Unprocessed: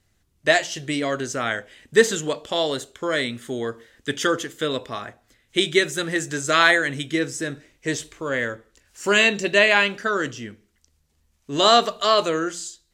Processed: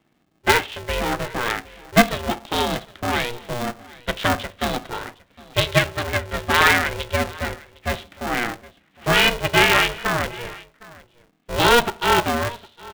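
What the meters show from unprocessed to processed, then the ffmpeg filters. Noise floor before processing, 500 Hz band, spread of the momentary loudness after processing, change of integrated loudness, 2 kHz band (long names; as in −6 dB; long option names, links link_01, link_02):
−67 dBFS, −2.0 dB, 14 LU, +0.5 dB, +1.0 dB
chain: -af "aresample=8000,aresample=44100,aecho=1:1:759:0.0841,aeval=exprs='val(0)*sgn(sin(2*PI*240*n/s))':channel_layout=same,volume=1dB"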